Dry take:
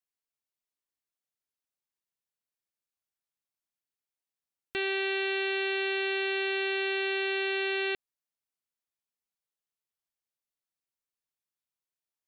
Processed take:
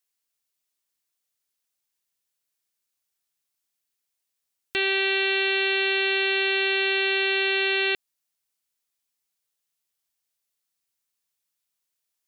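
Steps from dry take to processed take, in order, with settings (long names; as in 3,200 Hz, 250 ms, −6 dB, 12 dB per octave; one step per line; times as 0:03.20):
high-shelf EQ 2,300 Hz +9 dB
level +3.5 dB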